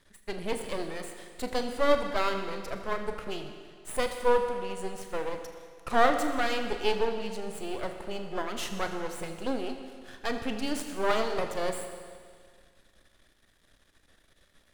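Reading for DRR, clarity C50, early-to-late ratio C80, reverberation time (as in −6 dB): 5.5 dB, 7.0 dB, 8.0 dB, 1.9 s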